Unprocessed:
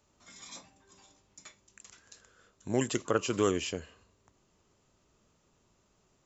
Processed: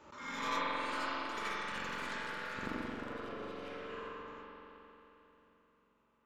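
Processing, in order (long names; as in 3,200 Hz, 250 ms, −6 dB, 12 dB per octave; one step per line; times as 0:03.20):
stylus tracing distortion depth 0.36 ms
noise gate with hold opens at −57 dBFS
low-pass filter 1,100 Hz 12 dB per octave
spectral tilt +4.5 dB per octave
downward compressor 3 to 1, threshold −41 dBFS, peak gain reduction 11.5 dB
Butterworth band-reject 720 Hz, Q 3.8
gate with flip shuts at −42 dBFS, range −27 dB
backwards echo 84 ms −4.5 dB
spring reverb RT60 3.5 s, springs 44 ms, chirp 35 ms, DRR −7 dB
delay with pitch and tempo change per echo 589 ms, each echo +4 semitones, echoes 3, each echo −6 dB
background raised ahead of every attack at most 71 dB per second
level +15.5 dB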